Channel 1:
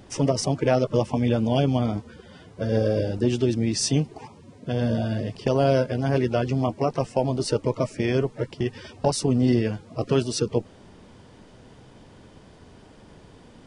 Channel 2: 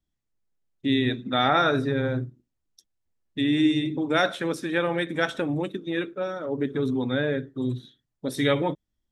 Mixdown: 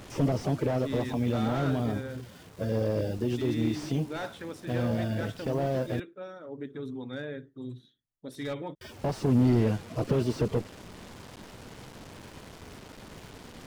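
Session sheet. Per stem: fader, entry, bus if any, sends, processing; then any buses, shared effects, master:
+1.5 dB, 0.00 s, muted 6–8.81, no send, limiter -14 dBFS, peak gain reduction 6.5 dB; requantised 8-bit, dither none; auto duck -6 dB, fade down 1.35 s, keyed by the second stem
-12.0 dB, 0.00 s, no send, dry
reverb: off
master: slew limiter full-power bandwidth 30 Hz

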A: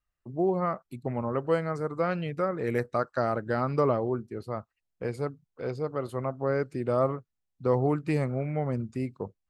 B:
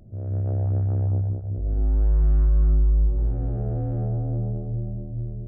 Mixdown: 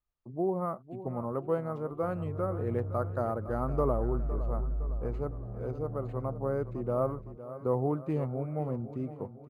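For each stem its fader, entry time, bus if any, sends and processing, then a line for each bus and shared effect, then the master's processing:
-4.0 dB, 0.00 s, no send, echo send -13.5 dB, band shelf 3300 Hz -12.5 dB 2.3 oct
-14.0 dB, 1.90 s, no send, no echo send, dry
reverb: off
echo: feedback echo 0.51 s, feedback 51%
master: decimation joined by straight lines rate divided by 4×

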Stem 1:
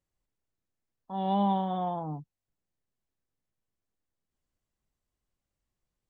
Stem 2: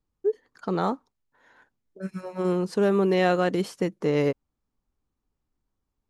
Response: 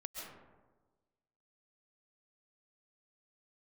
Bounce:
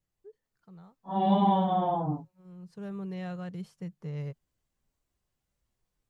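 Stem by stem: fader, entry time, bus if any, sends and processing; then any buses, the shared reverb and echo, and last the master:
-0.5 dB, 0.00 s, no send, phase scrambler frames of 0.1 s; AGC gain up to 4 dB
-19.5 dB, 0.00 s, no send, resonant low shelf 210 Hz +9 dB, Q 3; auto duck -23 dB, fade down 1.45 s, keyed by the first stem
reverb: off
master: dry

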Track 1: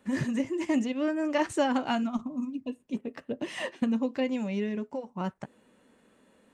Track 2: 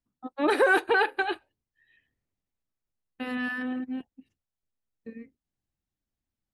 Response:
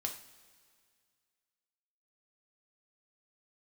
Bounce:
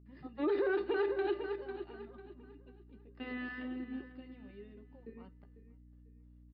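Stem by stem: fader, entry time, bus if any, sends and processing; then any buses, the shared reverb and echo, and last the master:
-14.0 dB, 0.00 s, send -17 dB, echo send -24 dB, gate with hold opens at -52 dBFS; limiter -22.5 dBFS, peak gain reduction 9 dB
-1.5 dB, 0.00 s, send -11.5 dB, echo send -11.5 dB, bell 350 Hz +13.5 dB 0.55 oct; hum 60 Hz, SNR 19 dB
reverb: on, pre-delay 3 ms
echo: feedback echo 0.497 s, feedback 32%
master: brick-wall FIR low-pass 5200 Hz; resonator 400 Hz, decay 0.16 s, harmonics odd, mix 80%; limiter -25 dBFS, peak gain reduction 11.5 dB

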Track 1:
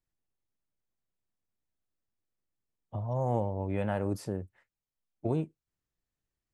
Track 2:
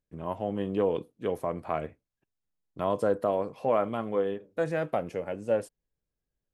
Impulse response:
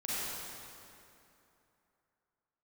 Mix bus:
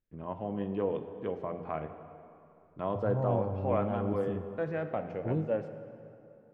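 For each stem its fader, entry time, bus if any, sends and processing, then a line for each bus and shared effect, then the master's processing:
-3.5 dB, 0.00 s, send -17 dB, de-hum 52.56 Hz, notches 2; envelope phaser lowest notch 150 Hz, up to 2300 Hz, full sweep at -26 dBFS
-6.0 dB, 0.00 s, send -13.5 dB, LPF 6200 Hz 24 dB/oct; de-hum 86.01 Hz, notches 9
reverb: on, RT60 2.9 s, pre-delay 33 ms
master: tone controls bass +3 dB, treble -15 dB

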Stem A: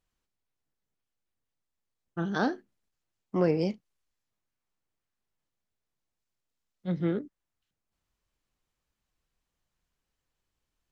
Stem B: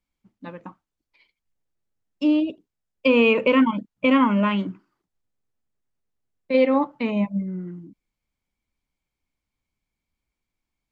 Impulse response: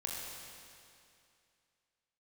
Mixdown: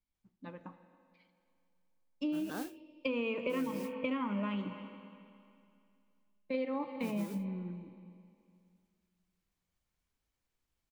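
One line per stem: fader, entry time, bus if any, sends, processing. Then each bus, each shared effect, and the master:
-4.5 dB, 0.15 s, no send, no echo send, modulation noise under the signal 10 dB; auto duck -9 dB, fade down 0.30 s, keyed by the second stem
-12.5 dB, 0.00 s, send -9 dB, echo send -19.5 dB, low shelf 150 Hz +4.5 dB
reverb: on, RT60 2.5 s, pre-delay 22 ms
echo: echo 0.274 s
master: compressor 5:1, threshold -32 dBFS, peak gain reduction 10 dB

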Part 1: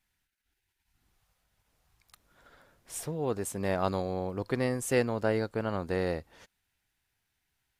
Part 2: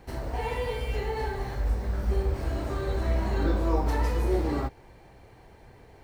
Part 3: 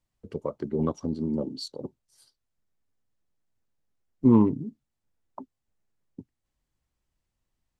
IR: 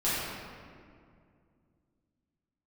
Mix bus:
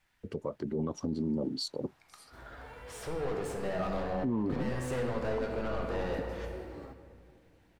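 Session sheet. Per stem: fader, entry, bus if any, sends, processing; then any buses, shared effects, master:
-17.5 dB, 0.00 s, send -8.5 dB, overdrive pedal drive 32 dB, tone 1500 Hz, clips at -13 dBFS
-19.5 dB, 2.25 s, send -20 dB, dry
+2.0 dB, 0.00 s, no send, dry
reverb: on, RT60 2.2 s, pre-delay 5 ms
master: limiter -24 dBFS, peak gain reduction 17 dB

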